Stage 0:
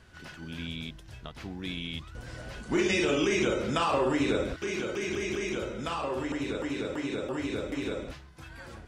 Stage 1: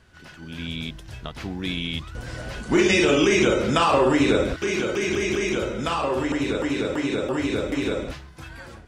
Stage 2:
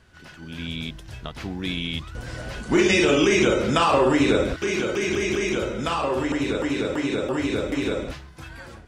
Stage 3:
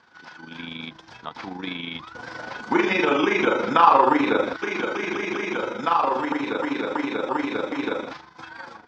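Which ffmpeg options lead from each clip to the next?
ffmpeg -i in.wav -af "dynaudnorm=framelen=250:gausssize=5:maxgain=8dB" out.wav
ffmpeg -i in.wav -af anull out.wav
ffmpeg -i in.wav -filter_complex "[0:a]acrossover=split=3200[link_01][link_02];[link_02]acompressor=threshold=-45dB:ratio=4:attack=1:release=60[link_03];[link_01][link_03]amix=inputs=2:normalize=0,tremolo=f=25:d=0.571,highpass=370,equalizer=frequency=390:width_type=q:width=4:gain=-8,equalizer=frequency=610:width_type=q:width=4:gain=-9,equalizer=frequency=900:width_type=q:width=4:gain=6,equalizer=frequency=1900:width_type=q:width=4:gain=-5,equalizer=frequency=2800:width_type=q:width=4:gain=-10,equalizer=frequency=4100:width_type=q:width=4:gain=-4,lowpass=frequency=5000:width=0.5412,lowpass=frequency=5000:width=1.3066,volume=8dB" out.wav

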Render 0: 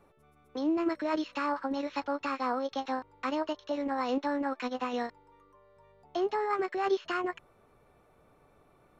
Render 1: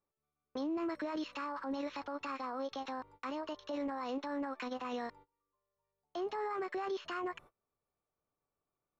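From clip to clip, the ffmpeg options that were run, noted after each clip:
ffmpeg -i in.wav -af "agate=range=-27dB:threshold=-52dB:ratio=16:detection=peak,equalizer=frequency=1100:width=4.2:gain=4,alimiter=level_in=5.5dB:limit=-24dB:level=0:latency=1:release=18,volume=-5.5dB,volume=-1.5dB" out.wav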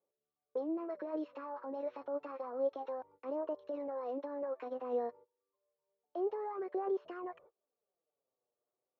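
ffmpeg -i in.wav -af "bandpass=frequency=520:width_type=q:width=2.5:csg=0,flanger=delay=0.1:depth=8.3:regen=24:speed=0.29:shape=sinusoidal,volume=9dB" out.wav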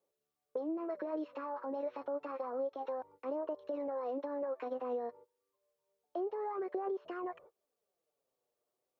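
ffmpeg -i in.wav -af "acompressor=threshold=-37dB:ratio=10,volume=3.5dB" out.wav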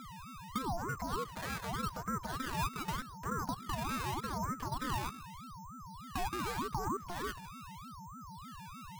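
ffmpeg -i in.wav -af "aeval=exprs='val(0)+0.00501*sin(2*PI*540*n/s)':channel_layout=same,acrusher=samples=12:mix=1:aa=0.000001:lfo=1:lforange=12:lforate=0.83,aeval=exprs='val(0)*sin(2*PI*570*n/s+570*0.4/3.3*sin(2*PI*3.3*n/s))':channel_layout=same,volume=3.5dB" out.wav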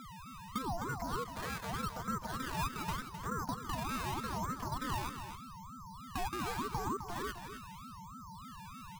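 ffmpeg -i in.wav -af "aecho=1:1:259:0.355,volume=-1dB" out.wav

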